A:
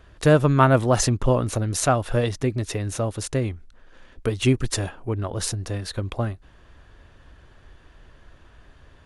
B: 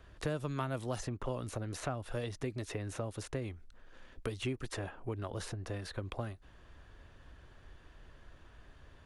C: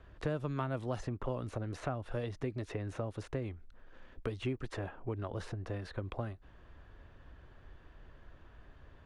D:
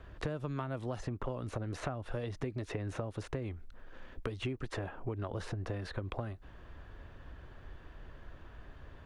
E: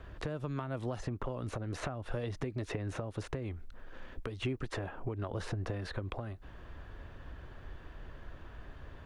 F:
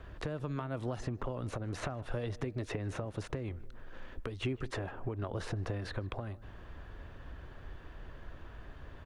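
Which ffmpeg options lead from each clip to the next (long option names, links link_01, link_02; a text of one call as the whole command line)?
ffmpeg -i in.wav -filter_complex "[0:a]acrossover=split=320|2800[link_01][link_02][link_03];[link_01]acompressor=threshold=-34dB:ratio=4[link_04];[link_02]acompressor=threshold=-33dB:ratio=4[link_05];[link_03]acompressor=threshold=-45dB:ratio=4[link_06];[link_04][link_05][link_06]amix=inputs=3:normalize=0,volume=-6dB" out.wav
ffmpeg -i in.wav -af "aemphasis=mode=reproduction:type=75fm" out.wav
ffmpeg -i in.wav -af "acompressor=threshold=-39dB:ratio=4,volume=5dB" out.wav
ffmpeg -i in.wav -af "alimiter=level_in=3.5dB:limit=-24dB:level=0:latency=1:release=248,volume=-3.5dB,volume=2.5dB" out.wav
ffmpeg -i in.wav -filter_complex "[0:a]asplit=2[link_01][link_02];[link_02]adelay=154,lowpass=frequency=1400:poles=1,volume=-18dB,asplit=2[link_03][link_04];[link_04]adelay=154,lowpass=frequency=1400:poles=1,volume=0.53,asplit=2[link_05][link_06];[link_06]adelay=154,lowpass=frequency=1400:poles=1,volume=0.53,asplit=2[link_07][link_08];[link_08]adelay=154,lowpass=frequency=1400:poles=1,volume=0.53[link_09];[link_01][link_03][link_05][link_07][link_09]amix=inputs=5:normalize=0" out.wav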